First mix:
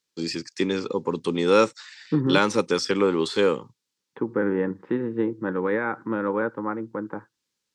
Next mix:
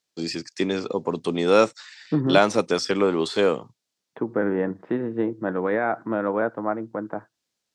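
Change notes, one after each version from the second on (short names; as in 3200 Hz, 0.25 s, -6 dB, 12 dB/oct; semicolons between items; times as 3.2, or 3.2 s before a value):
master: remove Butterworth band-stop 670 Hz, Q 2.8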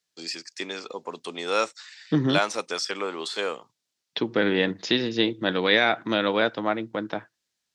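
first voice: add HPF 1400 Hz 6 dB/oct; second voice: remove LPF 1400 Hz 24 dB/oct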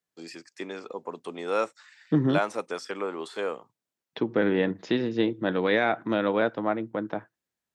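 master: add bell 4800 Hz -14.5 dB 2.1 oct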